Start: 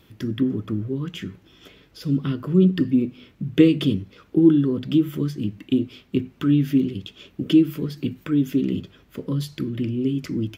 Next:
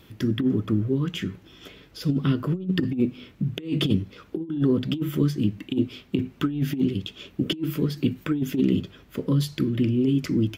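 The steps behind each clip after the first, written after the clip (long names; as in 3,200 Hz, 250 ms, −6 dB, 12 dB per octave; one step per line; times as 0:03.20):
compressor whose output falls as the input rises −21 dBFS, ratio −0.5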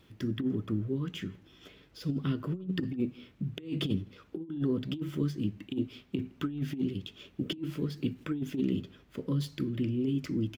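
running median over 3 samples
slap from a distant wall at 28 metres, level −27 dB
level −8.5 dB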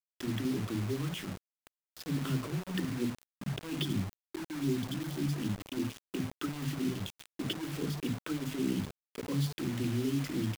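gain on a spectral selection 0:03.83–0:05.30, 390–3,000 Hz −27 dB
multiband delay without the direct sound highs, lows 50 ms, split 240 Hz
bit reduction 7 bits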